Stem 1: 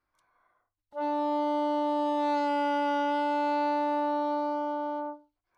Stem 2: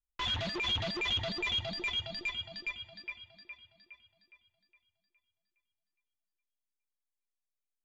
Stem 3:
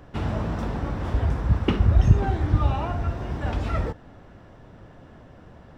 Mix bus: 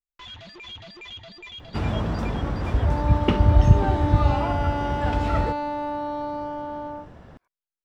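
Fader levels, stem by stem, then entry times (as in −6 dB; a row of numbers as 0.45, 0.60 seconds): −0.5, −8.0, +1.5 decibels; 1.90, 0.00, 1.60 seconds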